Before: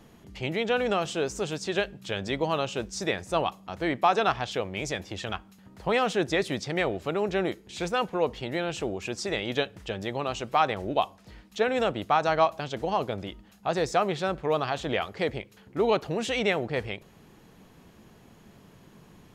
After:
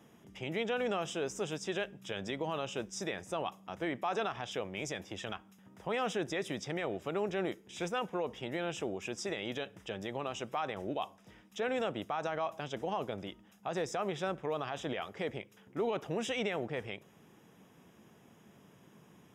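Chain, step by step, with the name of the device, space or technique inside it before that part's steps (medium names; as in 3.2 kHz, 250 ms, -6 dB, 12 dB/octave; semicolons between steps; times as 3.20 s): PA system with an anti-feedback notch (high-pass 120 Hz 12 dB/octave; Butterworth band-stop 4.3 kHz, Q 4.4; peak limiter -19.5 dBFS, peak gain reduction 9.5 dB); trim -5.5 dB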